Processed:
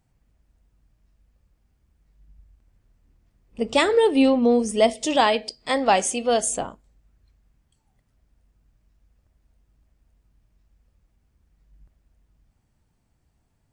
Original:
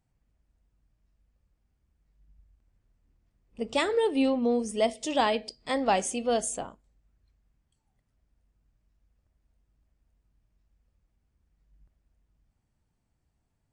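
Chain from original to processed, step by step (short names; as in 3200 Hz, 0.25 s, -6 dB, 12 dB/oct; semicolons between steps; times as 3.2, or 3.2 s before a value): 5.16–6.47 low shelf 350 Hz -6 dB; gain +7.5 dB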